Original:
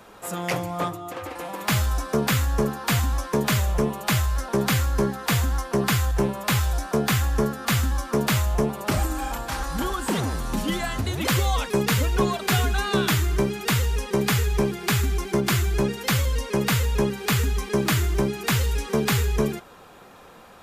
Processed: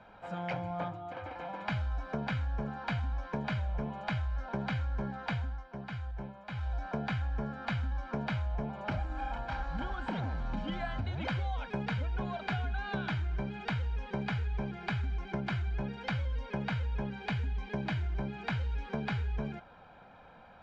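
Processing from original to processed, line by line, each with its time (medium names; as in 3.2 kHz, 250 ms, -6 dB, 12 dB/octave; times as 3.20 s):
5.27–6.86 s: dip -11.5 dB, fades 0.30 s
17.23–18.06 s: peaking EQ 1.3 kHz -6.5 dB 0.28 oct
whole clip: Bessel low-pass 2.5 kHz, order 4; comb 1.3 ms, depth 59%; compression, threshold -23 dBFS; trim -8 dB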